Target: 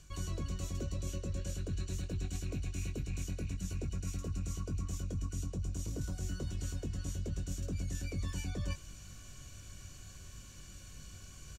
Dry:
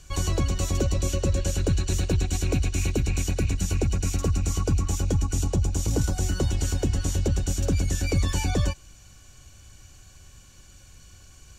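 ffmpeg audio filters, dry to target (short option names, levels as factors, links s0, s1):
-filter_complex "[0:a]equalizer=f=180:w=1.5:g=5,areverse,acompressor=threshold=0.0178:ratio=6,areverse,asuperstop=centerf=830:order=4:qfactor=5.3,asplit=2[s0][s1];[s1]adelay=21,volume=0.422[s2];[s0][s2]amix=inputs=2:normalize=0,volume=0.794"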